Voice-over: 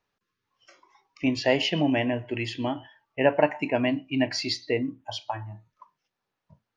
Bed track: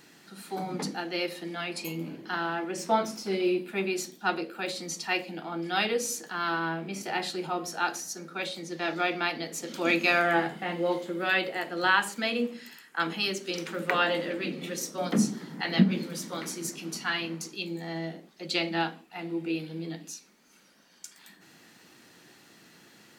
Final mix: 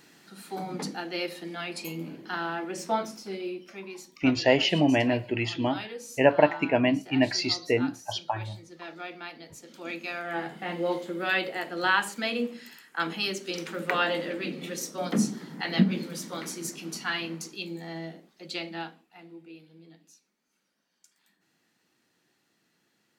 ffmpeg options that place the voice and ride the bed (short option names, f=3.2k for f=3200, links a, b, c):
-filter_complex "[0:a]adelay=3000,volume=1.5dB[a];[1:a]volume=10dB,afade=t=out:st=2.75:d=0.89:silence=0.298538,afade=t=in:st=10.24:d=0.49:silence=0.281838,afade=t=out:st=17.37:d=2.1:silence=0.158489[b];[a][b]amix=inputs=2:normalize=0"